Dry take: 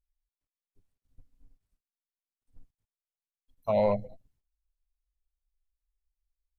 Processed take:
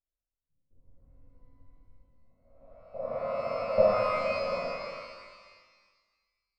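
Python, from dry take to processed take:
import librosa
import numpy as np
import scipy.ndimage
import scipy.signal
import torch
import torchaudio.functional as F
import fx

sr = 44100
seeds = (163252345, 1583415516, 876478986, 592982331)

p1 = fx.spec_blur(x, sr, span_ms=919.0)
p2 = fx.hum_notches(p1, sr, base_hz=60, count=8)
p3 = fx.noise_reduce_blind(p2, sr, reduce_db=20)
p4 = fx.room_flutter(p3, sr, wall_m=8.8, rt60_s=0.45)
p5 = fx.rider(p4, sr, range_db=3, speed_s=0.5)
p6 = p4 + F.gain(torch.from_numpy(p5), 2.0).numpy()
p7 = fx.peak_eq(p6, sr, hz=580.0, db=11.5, octaves=0.58)
p8 = fx.level_steps(p7, sr, step_db=20)
p9 = fx.lowpass(p8, sr, hz=1000.0, slope=6)
y = fx.rev_shimmer(p9, sr, seeds[0], rt60_s=1.5, semitones=12, shimmer_db=-8, drr_db=-7.5)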